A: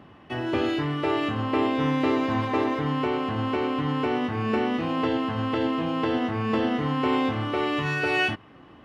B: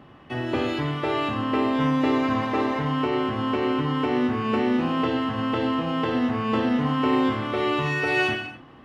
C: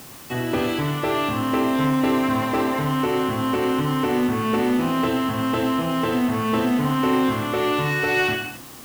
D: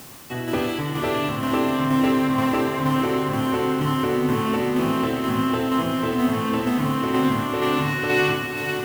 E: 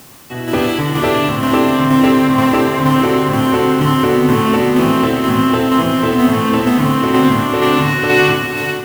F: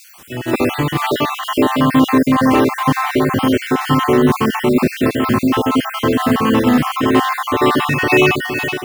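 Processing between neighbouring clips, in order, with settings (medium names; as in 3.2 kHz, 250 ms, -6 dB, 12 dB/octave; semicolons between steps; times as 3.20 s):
gated-style reverb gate 300 ms falling, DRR 4 dB
in parallel at -3.5 dB: hard clipper -24 dBFS, distortion -9 dB; on the sum: added noise white -42 dBFS; trim -1 dB
tremolo saw down 2.1 Hz, depth 40%; echo that smears into a reverb 503 ms, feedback 48%, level -5.5 dB
level rider gain up to 8.5 dB; trim +1.5 dB
random holes in the spectrogram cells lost 43%; trim +1 dB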